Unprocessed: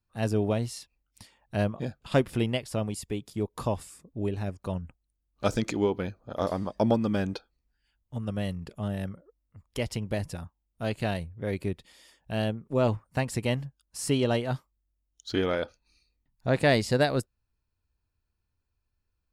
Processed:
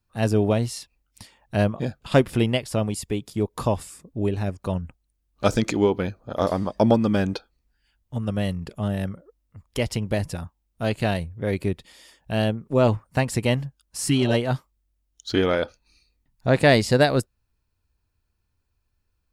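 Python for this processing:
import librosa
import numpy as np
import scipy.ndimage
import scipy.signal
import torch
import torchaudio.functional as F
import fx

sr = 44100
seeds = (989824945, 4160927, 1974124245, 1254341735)

y = fx.spec_repair(x, sr, seeds[0], start_s=14.09, length_s=0.22, low_hz=390.0, high_hz=1500.0, source='both')
y = F.gain(torch.from_numpy(y), 6.0).numpy()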